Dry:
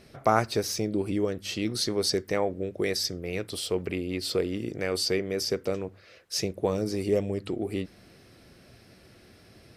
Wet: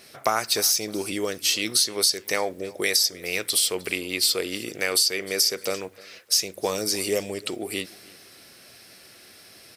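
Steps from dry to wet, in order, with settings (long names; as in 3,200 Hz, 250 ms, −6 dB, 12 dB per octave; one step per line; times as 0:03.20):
spectral tilt +4.5 dB per octave
downward compressor 12 to 1, threshold −23 dBFS, peak gain reduction 12 dB
repeating echo 307 ms, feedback 35%, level −22 dB
one half of a high-frequency compander decoder only
level +5.5 dB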